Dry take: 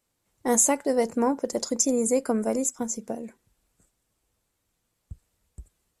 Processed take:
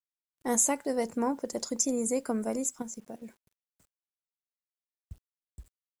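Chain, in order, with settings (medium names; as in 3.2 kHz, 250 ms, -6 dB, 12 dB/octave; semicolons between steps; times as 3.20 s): peaking EQ 480 Hz -2.5 dB 1 oct; 2.82–3.22 s: level held to a coarse grid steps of 18 dB; bit crusher 10-bit; trim -4.5 dB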